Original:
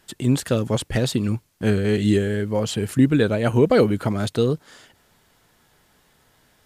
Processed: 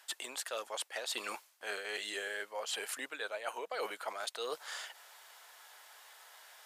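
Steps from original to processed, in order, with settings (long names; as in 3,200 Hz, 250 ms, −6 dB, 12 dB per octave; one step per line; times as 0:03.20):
high-pass filter 670 Hz 24 dB per octave
reversed playback
downward compressor 12 to 1, threshold −41 dBFS, peak gain reduction 21 dB
reversed playback
level +5 dB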